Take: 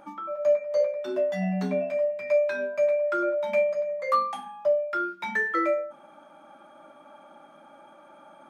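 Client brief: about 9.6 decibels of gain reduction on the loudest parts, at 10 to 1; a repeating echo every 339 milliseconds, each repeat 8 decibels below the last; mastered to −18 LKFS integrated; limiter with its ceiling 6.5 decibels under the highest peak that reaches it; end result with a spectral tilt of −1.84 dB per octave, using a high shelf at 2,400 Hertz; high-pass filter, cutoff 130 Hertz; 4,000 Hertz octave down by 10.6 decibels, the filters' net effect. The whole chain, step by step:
high-pass filter 130 Hz
high-shelf EQ 2,400 Hz −9 dB
parametric band 4,000 Hz −5 dB
downward compressor 10 to 1, threshold −29 dBFS
brickwall limiter −27.5 dBFS
repeating echo 339 ms, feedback 40%, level −8 dB
level +16 dB

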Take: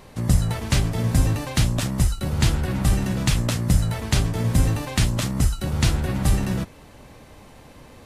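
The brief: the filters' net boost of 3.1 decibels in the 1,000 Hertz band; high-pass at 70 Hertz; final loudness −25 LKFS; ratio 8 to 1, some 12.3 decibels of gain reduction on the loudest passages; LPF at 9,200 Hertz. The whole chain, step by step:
high-pass filter 70 Hz
low-pass filter 9,200 Hz
parametric band 1,000 Hz +4 dB
downward compressor 8 to 1, threshold −28 dBFS
level +7.5 dB

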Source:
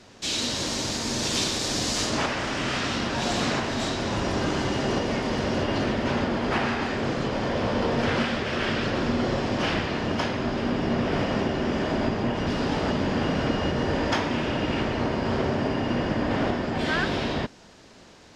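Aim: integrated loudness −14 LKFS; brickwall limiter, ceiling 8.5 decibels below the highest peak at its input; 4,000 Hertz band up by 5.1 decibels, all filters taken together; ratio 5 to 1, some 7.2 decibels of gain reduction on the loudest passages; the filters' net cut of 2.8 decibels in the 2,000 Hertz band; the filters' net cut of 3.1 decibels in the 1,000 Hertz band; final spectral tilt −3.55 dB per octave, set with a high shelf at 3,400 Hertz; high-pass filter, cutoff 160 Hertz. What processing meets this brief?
high-pass filter 160 Hz
parametric band 1,000 Hz −3.5 dB
parametric band 2,000 Hz −5 dB
high-shelf EQ 3,400 Hz +3 dB
parametric band 4,000 Hz +6 dB
downward compressor 5 to 1, threshold −27 dBFS
level +19 dB
brickwall limiter −5.5 dBFS

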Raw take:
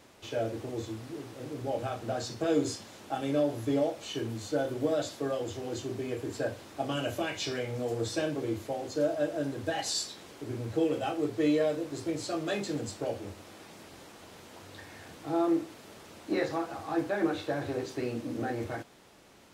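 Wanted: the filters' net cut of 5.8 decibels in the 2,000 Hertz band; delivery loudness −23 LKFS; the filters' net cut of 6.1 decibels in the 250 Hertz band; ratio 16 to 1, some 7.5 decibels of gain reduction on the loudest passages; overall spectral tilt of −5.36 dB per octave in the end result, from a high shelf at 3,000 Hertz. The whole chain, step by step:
parametric band 250 Hz −8.5 dB
parametric band 2,000 Hz −5 dB
high-shelf EQ 3,000 Hz −7.5 dB
downward compressor 16 to 1, threshold −33 dBFS
level +17 dB

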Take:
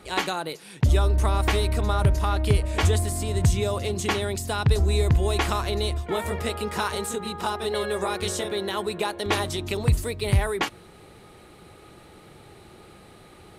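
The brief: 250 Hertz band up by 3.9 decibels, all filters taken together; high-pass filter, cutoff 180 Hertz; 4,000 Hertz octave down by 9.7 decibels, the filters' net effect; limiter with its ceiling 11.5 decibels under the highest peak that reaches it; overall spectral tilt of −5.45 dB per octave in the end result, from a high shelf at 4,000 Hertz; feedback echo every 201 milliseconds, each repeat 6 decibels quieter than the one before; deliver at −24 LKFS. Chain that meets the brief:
high-pass filter 180 Hz
parametric band 250 Hz +8 dB
high-shelf EQ 4,000 Hz −6 dB
parametric band 4,000 Hz −9 dB
brickwall limiter −18.5 dBFS
repeating echo 201 ms, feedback 50%, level −6 dB
level +4 dB

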